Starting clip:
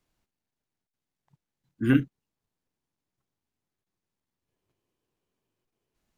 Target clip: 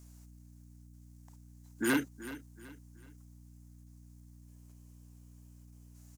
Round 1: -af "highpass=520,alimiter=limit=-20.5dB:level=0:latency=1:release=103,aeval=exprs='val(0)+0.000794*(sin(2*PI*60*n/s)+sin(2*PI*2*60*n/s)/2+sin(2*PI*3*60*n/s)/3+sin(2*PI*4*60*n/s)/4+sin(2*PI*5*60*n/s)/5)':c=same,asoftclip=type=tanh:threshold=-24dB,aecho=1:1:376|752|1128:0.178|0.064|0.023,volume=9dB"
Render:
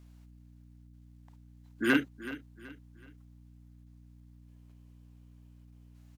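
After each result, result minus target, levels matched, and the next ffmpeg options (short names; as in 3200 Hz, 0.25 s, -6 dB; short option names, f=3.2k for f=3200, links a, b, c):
8000 Hz band -12.5 dB; soft clip: distortion -9 dB
-af "highpass=520,highshelf=f=4.8k:t=q:w=1.5:g=11,alimiter=limit=-20.5dB:level=0:latency=1:release=103,aeval=exprs='val(0)+0.000794*(sin(2*PI*60*n/s)+sin(2*PI*2*60*n/s)/2+sin(2*PI*3*60*n/s)/3+sin(2*PI*4*60*n/s)/4+sin(2*PI*5*60*n/s)/5)':c=same,asoftclip=type=tanh:threshold=-24dB,aecho=1:1:376|752|1128:0.178|0.064|0.023,volume=9dB"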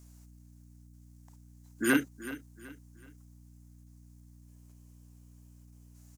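soft clip: distortion -9 dB
-af "highpass=520,highshelf=f=4.8k:t=q:w=1.5:g=11,alimiter=limit=-20.5dB:level=0:latency=1:release=103,aeval=exprs='val(0)+0.000794*(sin(2*PI*60*n/s)+sin(2*PI*2*60*n/s)/2+sin(2*PI*3*60*n/s)/3+sin(2*PI*4*60*n/s)/4+sin(2*PI*5*60*n/s)/5)':c=same,asoftclip=type=tanh:threshold=-32.5dB,aecho=1:1:376|752|1128:0.178|0.064|0.023,volume=9dB"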